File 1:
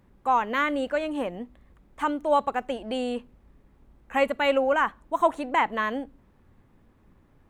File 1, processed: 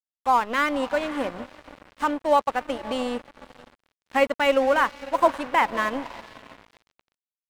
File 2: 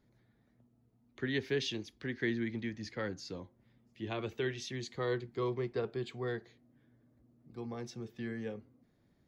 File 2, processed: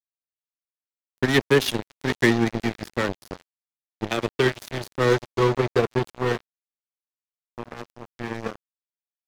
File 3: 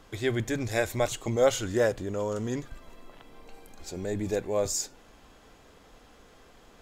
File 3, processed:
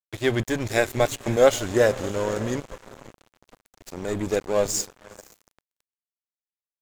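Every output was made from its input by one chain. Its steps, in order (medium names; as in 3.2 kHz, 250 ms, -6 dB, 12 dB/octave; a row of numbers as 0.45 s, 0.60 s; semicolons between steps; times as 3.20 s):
echo that smears into a reverb 538 ms, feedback 47%, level -13 dB; crossover distortion -37.5 dBFS; normalise loudness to -24 LUFS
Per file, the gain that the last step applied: +3.5 dB, +19.0 dB, +7.0 dB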